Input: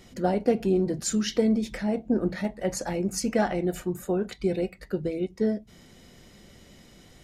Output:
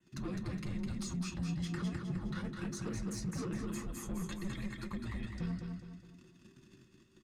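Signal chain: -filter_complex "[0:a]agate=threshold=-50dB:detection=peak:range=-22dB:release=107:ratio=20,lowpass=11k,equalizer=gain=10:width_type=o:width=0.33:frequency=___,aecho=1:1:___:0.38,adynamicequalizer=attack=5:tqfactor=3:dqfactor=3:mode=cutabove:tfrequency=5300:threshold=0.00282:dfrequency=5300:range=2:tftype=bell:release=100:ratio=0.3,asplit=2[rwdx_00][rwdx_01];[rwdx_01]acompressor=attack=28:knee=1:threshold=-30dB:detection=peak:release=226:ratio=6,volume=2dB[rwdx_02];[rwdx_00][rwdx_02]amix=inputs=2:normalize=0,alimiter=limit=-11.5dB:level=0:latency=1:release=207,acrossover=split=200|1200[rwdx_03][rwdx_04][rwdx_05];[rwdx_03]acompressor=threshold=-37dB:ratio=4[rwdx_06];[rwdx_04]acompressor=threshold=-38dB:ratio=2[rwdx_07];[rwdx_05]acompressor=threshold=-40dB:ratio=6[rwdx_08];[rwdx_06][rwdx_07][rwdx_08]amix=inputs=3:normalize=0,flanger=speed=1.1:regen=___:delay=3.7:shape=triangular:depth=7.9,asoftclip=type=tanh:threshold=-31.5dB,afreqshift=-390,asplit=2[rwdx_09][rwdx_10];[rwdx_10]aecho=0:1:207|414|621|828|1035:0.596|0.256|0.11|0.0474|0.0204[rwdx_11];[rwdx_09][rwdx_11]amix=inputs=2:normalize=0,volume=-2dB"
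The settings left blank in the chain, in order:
270, 1.3, 42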